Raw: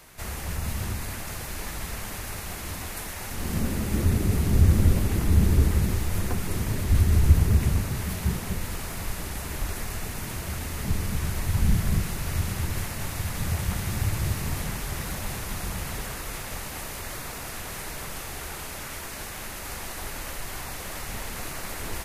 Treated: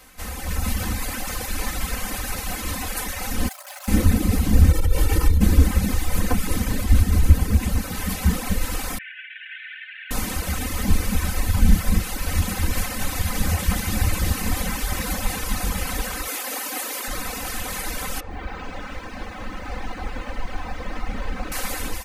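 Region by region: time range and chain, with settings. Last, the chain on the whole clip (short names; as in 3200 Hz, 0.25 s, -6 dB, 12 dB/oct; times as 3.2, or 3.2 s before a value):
3.48–3.88 overloaded stage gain 33.5 dB + brick-wall FIR high-pass 550 Hz
4.71–5.41 comb 2.2 ms, depth 79% + compressor 16:1, threshold -16 dBFS
8.98–10.11 CVSD 16 kbps + Chebyshev high-pass 1500 Hz, order 8
16.27–17.08 steep high-pass 240 Hz 48 dB/oct + high shelf 11000 Hz +5.5 dB
18.2–21.52 tape spacing loss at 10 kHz 29 dB + lo-fi delay 0.105 s, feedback 55%, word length 10-bit, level -7 dB
whole clip: reverb removal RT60 1.1 s; comb 3.9 ms, depth 85%; AGC gain up to 7 dB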